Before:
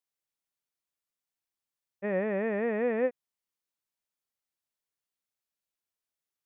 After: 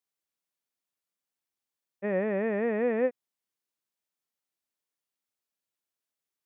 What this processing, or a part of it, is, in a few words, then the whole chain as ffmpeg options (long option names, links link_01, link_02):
filter by subtraction: -filter_complex "[0:a]asplit=2[link_01][link_02];[link_02]lowpass=220,volume=-1[link_03];[link_01][link_03]amix=inputs=2:normalize=0"